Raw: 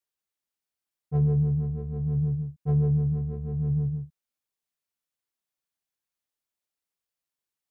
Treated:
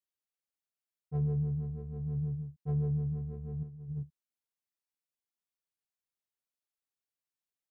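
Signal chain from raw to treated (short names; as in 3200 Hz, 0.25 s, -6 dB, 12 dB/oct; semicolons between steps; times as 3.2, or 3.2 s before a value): 3.63–4.03 negative-ratio compressor -31 dBFS, ratio -0.5; gain -8 dB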